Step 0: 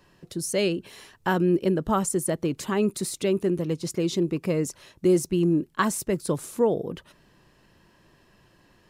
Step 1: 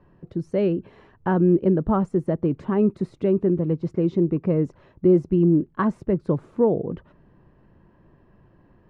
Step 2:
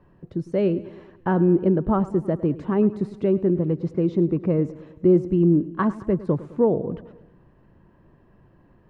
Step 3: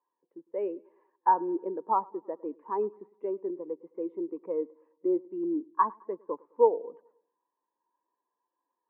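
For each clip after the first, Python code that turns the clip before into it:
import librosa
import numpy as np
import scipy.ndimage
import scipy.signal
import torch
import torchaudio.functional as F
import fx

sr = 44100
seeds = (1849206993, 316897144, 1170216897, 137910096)

y1 = scipy.signal.sosfilt(scipy.signal.butter(2, 1300.0, 'lowpass', fs=sr, output='sos'), x)
y1 = fx.low_shelf(y1, sr, hz=340.0, db=7.0)
y2 = fx.echo_feedback(y1, sr, ms=105, feedback_pct=57, wet_db=-17.5)
y3 = fx.cabinet(y2, sr, low_hz=370.0, low_slope=24, high_hz=2500.0, hz=(370.0, 620.0, 960.0, 1400.0), db=(-7, -8, 9, -4))
y3 = fx.spectral_expand(y3, sr, expansion=1.5)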